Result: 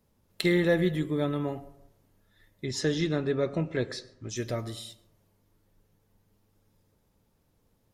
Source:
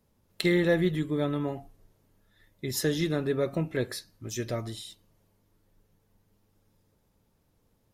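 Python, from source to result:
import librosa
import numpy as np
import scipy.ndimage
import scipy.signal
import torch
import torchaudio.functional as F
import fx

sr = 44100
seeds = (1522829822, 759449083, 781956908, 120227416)

y = fx.lowpass(x, sr, hz=7200.0, slope=24, at=(2.65, 4.37))
y = fx.rev_plate(y, sr, seeds[0], rt60_s=0.79, hf_ratio=0.35, predelay_ms=90, drr_db=19.0)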